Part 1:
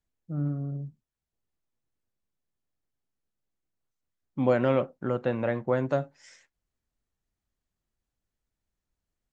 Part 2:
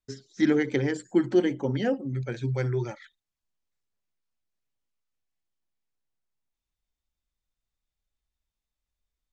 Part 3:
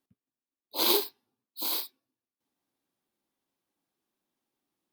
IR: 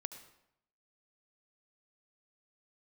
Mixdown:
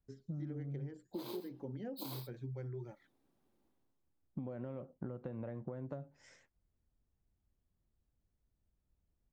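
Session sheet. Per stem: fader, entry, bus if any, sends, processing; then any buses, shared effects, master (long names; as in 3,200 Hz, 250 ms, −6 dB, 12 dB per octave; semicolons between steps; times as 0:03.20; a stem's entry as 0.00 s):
−5.0 dB, 0.00 s, bus A, no send, parametric band 69 Hz +5.5 dB 2.7 octaves
−18.5 dB, 0.00 s, no bus, no send, no processing
+3.0 dB, 0.40 s, bus A, no send, automatic ducking −23 dB, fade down 0.70 s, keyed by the first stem
bus A: 0.0 dB, downward compressor, threshold −36 dBFS, peak gain reduction 13.5 dB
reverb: not used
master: tilt shelving filter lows +7 dB, about 1,200 Hz; downward compressor 6 to 1, threshold −40 dBFS, peak gain reduction 14 dB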